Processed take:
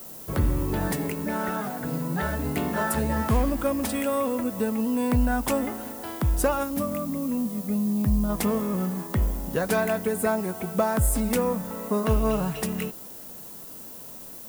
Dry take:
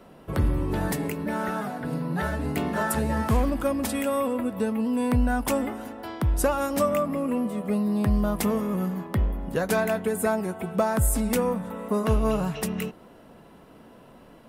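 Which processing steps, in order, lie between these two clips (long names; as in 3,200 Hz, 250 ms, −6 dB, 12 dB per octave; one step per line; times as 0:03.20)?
gain on a spectral selection 0:06.63–0:08.29, 320–9,700 Hz −8 dB
background noise violet −42 dBFS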